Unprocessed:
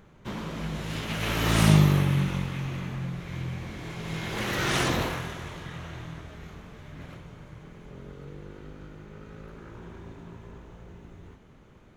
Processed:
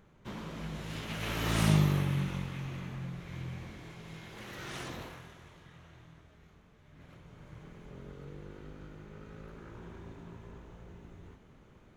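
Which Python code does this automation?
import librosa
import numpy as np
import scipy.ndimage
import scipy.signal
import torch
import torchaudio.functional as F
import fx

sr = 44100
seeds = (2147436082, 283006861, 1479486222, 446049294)

y = fx.gain(x, sr, db=fx.line((3.61, -7.0), (4.35, -16.0), (6.79, -16.0), (7.56, -4.0)))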